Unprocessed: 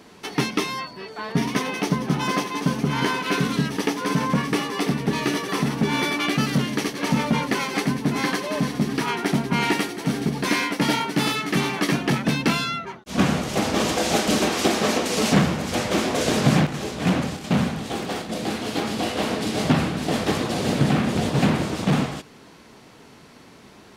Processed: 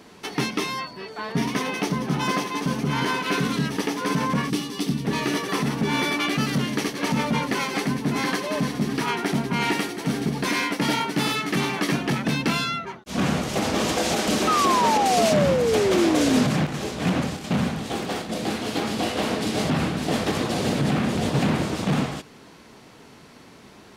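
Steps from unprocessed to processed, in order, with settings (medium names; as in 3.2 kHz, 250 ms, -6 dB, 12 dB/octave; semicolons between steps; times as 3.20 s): 4.50–5.05 s: high-order bell 1 kHz -10.5 dB 2.8 oct; peak limiter -13 dBFS, peak gain reduction 8 dB; 14.47–16.44 s: painted sound fall 240–1300 Hz -21 dBFS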